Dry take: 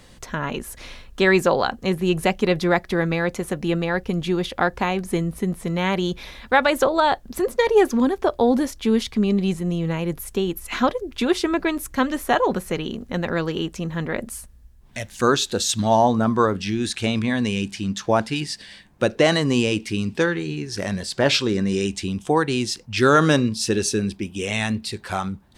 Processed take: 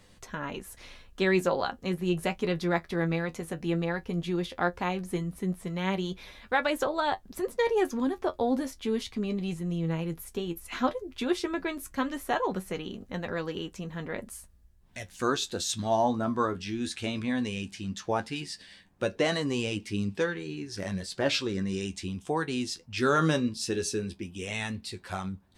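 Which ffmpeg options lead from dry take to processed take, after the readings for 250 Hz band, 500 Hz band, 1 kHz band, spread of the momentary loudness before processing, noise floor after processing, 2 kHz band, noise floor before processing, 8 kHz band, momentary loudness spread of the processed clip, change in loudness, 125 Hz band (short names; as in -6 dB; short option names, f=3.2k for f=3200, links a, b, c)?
-8.5 dB, -9.0 dB, -9.0 dB, 10 LU, -57 dBFS, -9.0 dB, -48 dBFS, -9.0 dB, 11 LU, -9.0 dB, -8.0 dB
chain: -af "flanger=delay=10:depth=2.3:regen=45:speed=0.15:shape=triangular,volume=-5dB"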